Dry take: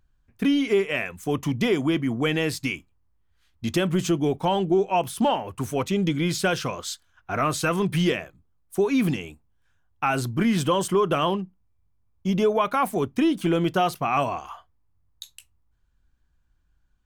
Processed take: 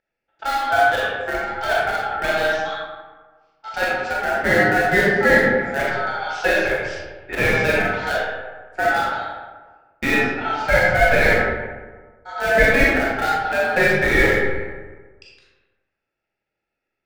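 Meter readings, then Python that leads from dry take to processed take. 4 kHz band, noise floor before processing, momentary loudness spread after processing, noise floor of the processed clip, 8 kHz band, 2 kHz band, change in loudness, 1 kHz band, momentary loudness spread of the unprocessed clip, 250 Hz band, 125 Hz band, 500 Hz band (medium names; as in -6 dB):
+2.0 dB, -66 dBFS, 15 LU, -82 dBFS, -2.0 dB, +15.0 dB, +5.5 dB, +5.0 dB, 11 LU, -3.5 dB, -1.5 dB, +5.0 dB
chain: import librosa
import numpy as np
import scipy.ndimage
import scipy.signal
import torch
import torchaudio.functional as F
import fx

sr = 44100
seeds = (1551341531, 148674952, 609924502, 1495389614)

p1 = fx.cabinet(x, sr, low_hz=260.0, low_slope=24, high_hz=4300.0, hz=(350.0, 600.0, 1100.0, 1900.0, 2900.0), db=(-4, 8, 3, -6, -9))
p2 = np.where(np.abs(p1) >= 10.0 ** (-18.5 / 20.0), p1, 0.0)
p3 = p1 + F.gain(torch.from_numpy(p2), -4.0).numpy()
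p4 = p3 * np.sin(2.0 * np.pi * 1100.0 * np.arange(len(p3)) / sr)
p5 = fx.rev_freeverb(p4, sr, rt60_s=1.4, hf_ratio=0.5, predelay_ms=0, drr_db=-5.5)
y = F.gain(torch.from_numpy(p5), -1.0).numpy()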